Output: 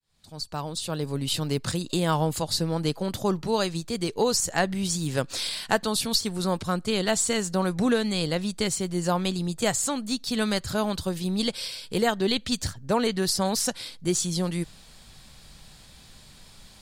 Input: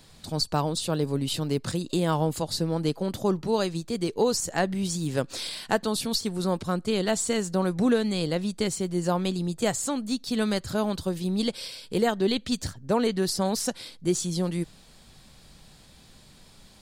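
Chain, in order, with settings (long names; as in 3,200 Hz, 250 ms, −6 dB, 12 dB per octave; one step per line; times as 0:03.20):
fade in at the beginning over 1.46 s
parametric band 320 Hz −5.5 dB 2.4 octaves
level +4 dB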